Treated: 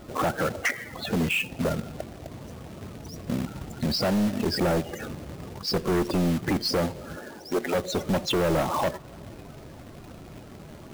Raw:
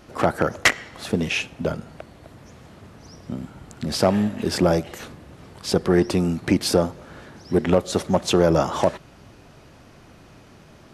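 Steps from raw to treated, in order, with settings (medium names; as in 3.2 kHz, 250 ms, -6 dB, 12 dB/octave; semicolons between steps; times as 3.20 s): 7.15–7.74 s: high-pass 210 Hz -> 560 Hz 12 dB/octave; in parallel at +2.5 dB: compression 5:1, threshold -27 dBFS, peak gain reduction 14 dB; on the sum: loudest bins only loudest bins 32; saturation -17 dBFS, distortion -8 dB; companded quantiser 4-bit; on a send at -23 dB: reverberation RT60 2.6 s, pre-delay 5 ms; on the sum: trim -2.5 dB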